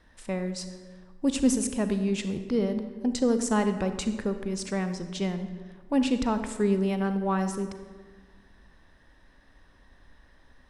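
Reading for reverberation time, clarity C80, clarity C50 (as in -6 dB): 1.5 s, 11.0 dB, 9.5 dB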